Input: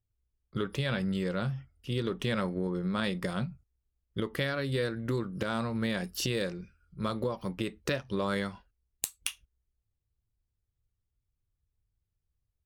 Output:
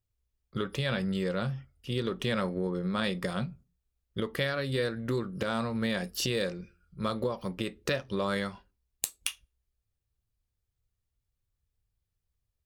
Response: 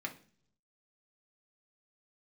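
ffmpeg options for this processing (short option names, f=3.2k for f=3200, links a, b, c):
-filter_complex "[0:a]asplit=2[a][b];[1:a]atrim=start_sample=2205,asetrate=88200,aresample=44100[c];[b][c]afir=irnorm=-1:irlink=0,volume=-5.5dB[d];[a][d]amix=inputs=2:normalize=0"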